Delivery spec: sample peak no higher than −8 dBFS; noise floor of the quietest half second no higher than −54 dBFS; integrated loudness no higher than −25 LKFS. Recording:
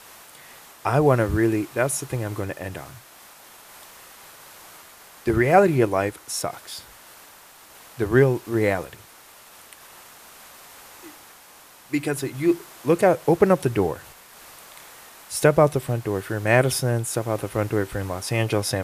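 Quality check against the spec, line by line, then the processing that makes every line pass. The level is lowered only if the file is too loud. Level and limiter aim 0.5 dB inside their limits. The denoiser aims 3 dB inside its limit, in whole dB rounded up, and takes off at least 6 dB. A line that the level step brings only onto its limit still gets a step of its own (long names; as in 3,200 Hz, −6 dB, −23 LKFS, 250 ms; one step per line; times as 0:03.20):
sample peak −3.5 dBFS: out of spec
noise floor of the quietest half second −49 dBFS: out of spec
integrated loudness −22.5 LKFS: out of spec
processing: broadband denoise 6 dB, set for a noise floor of −49 dBFS
level −3 dB
brickwall limiter −8.5 dBFS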